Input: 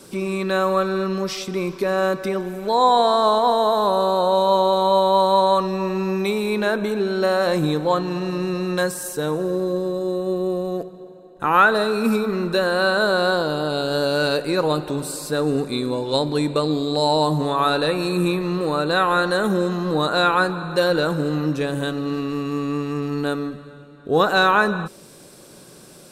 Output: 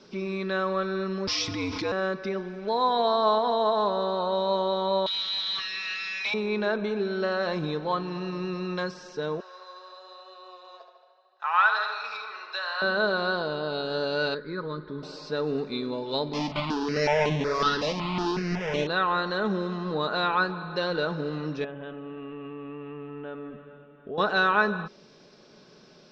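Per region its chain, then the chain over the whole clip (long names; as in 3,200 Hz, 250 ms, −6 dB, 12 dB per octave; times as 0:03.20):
0:01.27–0:01.92: high-shelf EQ 4,800 Hz +12 dB + frequency shifter −80 Hz + envelope flattener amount 70%
0:05.06–0:06.34: Butterworth high-pass 1,800 Hz + mid-hump overdrive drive 27 dB, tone 5,700 Hz, clips at −15 dBFS
0:09.40–0:12.82: high-pass filter 830 Hz 24 dB per octave + parametric band 5,000 Hz +4 dB 0.26 octaves + tape delay 72 ms, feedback 71%, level −7 dB, low-pass 5,800 Hz
0:14.34–0:15.03: high-frequency loss of the air 310 metres + phaser with its sweep stopped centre 2,700 Hz, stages 6
0:16.33–0:18.87: each half-wave held at its own peak + step-sequenced phaser 5.4 Hz 400–4,800 Hz
0:21.64–0:24.18: Butterworth low-pass 3,400 Hz 96 dB per octave + downward compressor 4 to 1, threshold −27 dBFS + parametric band 610 Hz +5 dB 0.38 octaves
whole clip: elliptic low-pass filter 5,500 Hz, stop band 50 dB; low-shelf EQ 130 Hz −5 dB; comb filter 4.7 ms, depth 35%; level −6.5 dB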